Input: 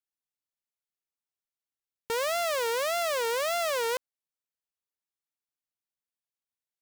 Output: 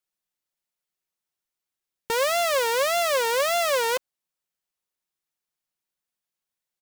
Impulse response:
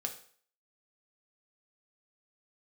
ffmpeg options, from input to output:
-af "aecho=1:1:5.5:0.34,volume=5.5dB"

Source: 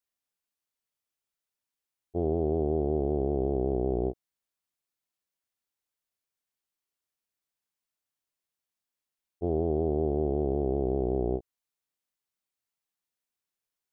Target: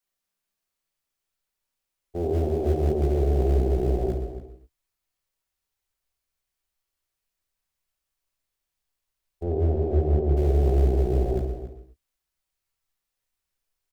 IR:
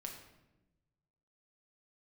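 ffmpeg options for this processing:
-filter_complex "[0:a]asplit=2[link_01][link_02];[link_02]alimiter=level_in=2.5dB:limit=-24dB:level=0:latency=1:release=107,volume=-2.5dB,volume=-0.5dB[link_03];[link_01][link_03]amix=inputs=2:normalize=0[link_04];[1:a]atrim=start_sample=2205,afade=type=out:start_time=0.32:duration=0.01,atrim=end_sample=14553[link_05];[link_04][link_05]afir=irnorm=-1:irlink=0,acrossover=split=190|310[link_06][link_07][link_08];[link_06]acrusher=bits=4:mode=log:mix=0:aa=0.000001[link_09];[link_09][link_07][link_08]amix=inputs=3:normalize=0,asettb=1/sr,asplit=3[link_10][link_11][link_12];[link_10]atrim=end=9.434[link_13];[link_11]atrim=start=9.43:end=10.37,asetpts=PTS-STARTPTS,afade=type=in:duration=0.004:curve=qsin,afade=type=out:start_time=0.936:duration=0.004:curve=qsin,lowpass=frequency=1100:poles=1[link_14];[link_12]atrim=start=10.366[link_15];[link_13][link_14]acrossfade=duration=0.004:curve1=hsin:curve2=qsin[link_16];[link_16][link_15]acrossfade=duration=0.004:curve1=qsin:curve2=hsin,asplit=2[link_17][link_18];[link_18]adelay=279.9,volume=-12dB,highshelf=frequency=4000:gain=-6.3[link_19];[link_17][link_19]amix=inputs=2:normalize=0,asubboost=boost=7.5:cutoff=66,volume=2.5dB"

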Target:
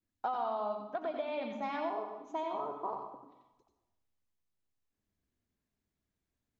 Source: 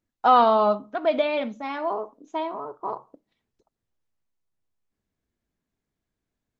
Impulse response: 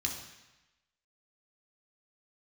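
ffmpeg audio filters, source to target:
-filter_complex "[0:a]adynamicequalizer=threshold=0.0251:dfrequency=780:dqfactor=1.3:tfrequency=780:tqfactor=1.3:attack=5:release=100:ratio=0.375:range=4:mode=boostabove:tftype=bell,acompressor=threshold=-27dB:ratio=16,asplit=2[link_01][link_02];[1:a]atrim=start_sample=2205,adelay=89[link_03];[link_02][link_03]afir=irnorm=-1:irlink=0,volume=-7dB[link_04];[link_01][link_04]amix=inputs=2:normalize=0,volume=-6dB"

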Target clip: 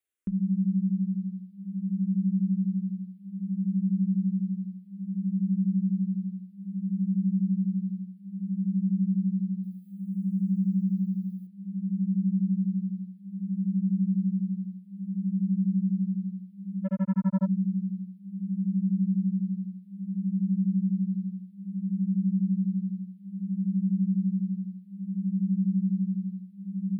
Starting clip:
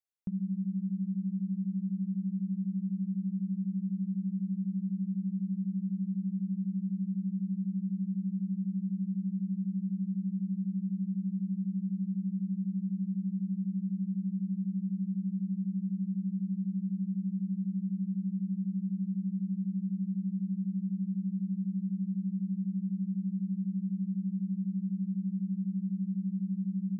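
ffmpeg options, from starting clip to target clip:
ffmpeg -i in.wav -filter_complex "[0:a]asettb=1/sr,asplit=3[link_01][link_02][link_03];[link_01]atrim=end=9.634[link_04];[link_02]atrim=start=9.63:end=11.47,asetpts=PTS-STARTPTS,afade=type=in:duration=0.004:curve=qsin,afade=type=out:start_time=1.836:duration=0.004:curve=qsin,aemphasis=mode=production:type=75kf[link_05];[link_03]atrim=start=11.466[link_06];[link_04][link_05]acrossfade=duration=0.004:curve1=hsin:curve2=qsin[link_07];[link_07][link_06]acrossfade=duration=0.004:curve1=qsin:curve2=hsin,asplit=3[link_08][link_09][link_10];[link_08]afade=type=out:start_time=16.84:duration=0.02[link_11];[link_09]acrusher=bits=4:mix=0:aa=0.5,afade=type=in:start_time=16.84:duration=0.02,afade=type=out:start_time=17.45:duration=0.02[link_12];[link_10]afade=type=in:start_time=17.45:duration=0.02[link_13];[link_11][link_12][link_13]amix=inputs=3:normalize=0,asplit=2[link_14][link_15];[link_15]afreqshift=-0.6[link_16];[link_14][link_16]amix=inputs=2:normalize=1,volume=7.5dB" out.wav

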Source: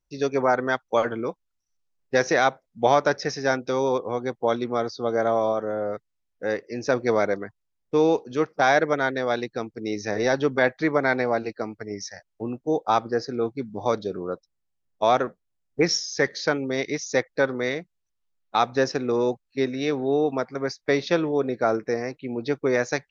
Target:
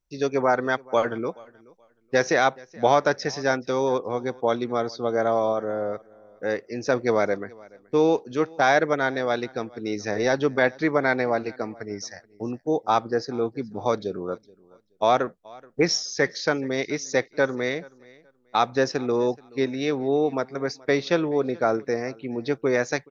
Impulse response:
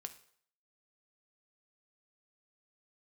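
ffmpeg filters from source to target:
-af "aecho=1:1:427|854:0.0631|0.0139"

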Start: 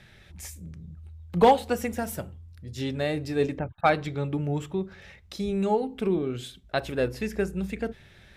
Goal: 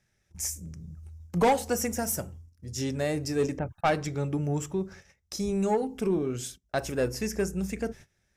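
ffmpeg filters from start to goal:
ffmpeg -i in.wav -af "agate=range=-20dB:threshold=-45dB:ratio=16:detection=peak,highshelf=frequency=4700:width_type=q:width=3:gain=7,asoftclip=type=tanh:threshold=-17dB" out.wav

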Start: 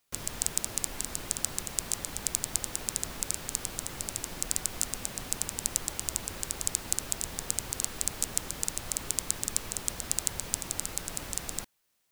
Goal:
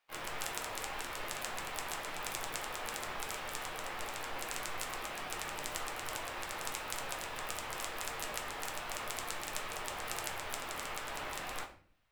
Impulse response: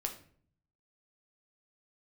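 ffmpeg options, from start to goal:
-filter_complex "[0:a]asplit=3[link_01][link_02][link_03];[link_02]asetrate=66075,aresample=44100,atempo=0.66742,volume=-4dB[link_04];[link_03]asetrate=88200,aresample=44100,atempo=0.5,volume=-11dB[link_05];[link_01][link_04][link_05]amix=inputs=3:normalize=0,acrossover=split=490 3400:gain=0.158 1 0.112[link_06][link_07][link_08];[link_06][link_07][link_08]amix=inputs=3:normalize=0[link_09];[1:a]atrim=start_sample=2205[link_10];[link_09][link_10]afir=irnorm=-1:irlink=0,volume=3dB"

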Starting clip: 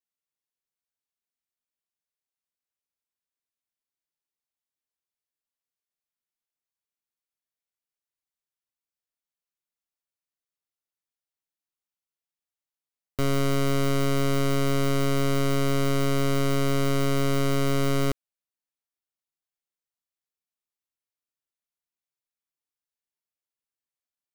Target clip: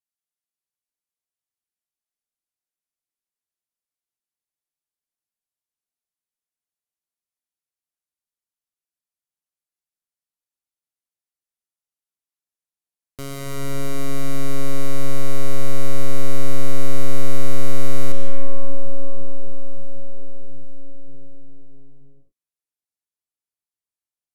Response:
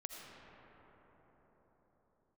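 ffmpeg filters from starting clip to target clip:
-filter_complex "[0:a]aemphasis=mode=production:type=cd[link_01];[1:a]atrim=start_sample=2205,asetrate=24255,aresample=44100[link_02];[link_01][link_02]afir=irnorm=-1:irlink=0,volume=-5dB"

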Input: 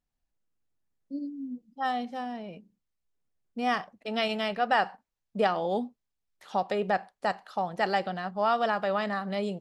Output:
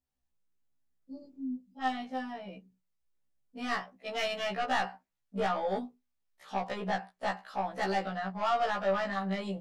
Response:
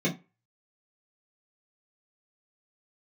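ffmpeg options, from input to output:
-filter_complex "[0:a]adynamicequalizer=threshold=0.00794:dfrequency=1700:dqfactor=0.84:tfrequency=1700:tqfactor=0.84:attack=5:release=100:ratio=0.375:range=2:mode=boostabove:tftype=bell,aeval=exprs='(tanh(12.6*val(0)+0.1)-tanh(0.1))/12.6':channel_layout=same,asplit=2[link_01][link_02];[1:a]atrim=start_sample=2205[link_03];[link_02][link_03]afir=irnorm=-1:irlink=0,volume=-32.5dB[link_04];[link_01][link_04]amix=inputs=2:normalize=0,afftfilt=real='re*1.73*eq(mod(b,3),0)':imag='im*1.73*eq(mod(b,3),0)':win_size=2048:overlap=0.75"

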